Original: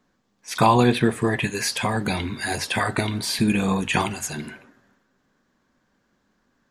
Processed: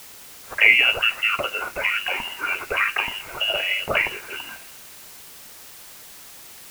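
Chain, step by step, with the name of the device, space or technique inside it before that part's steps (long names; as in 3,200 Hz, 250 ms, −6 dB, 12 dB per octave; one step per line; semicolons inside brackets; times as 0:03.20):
scrambled radio voice (band-pass filter 340–3,200 Hz; voice inversion scrambler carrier 3,100 Hz; white noise bed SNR 18 dB)
level +3 dB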